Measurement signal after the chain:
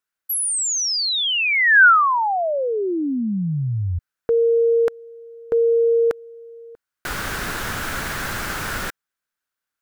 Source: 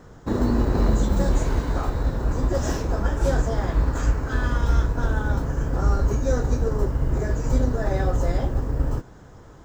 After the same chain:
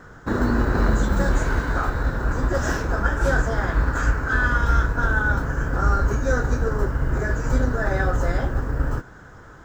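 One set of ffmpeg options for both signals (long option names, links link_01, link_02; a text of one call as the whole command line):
ffmpeg -i in.wav -af "equalizer=frequency=1500:width=2.1:gain=13" out.wav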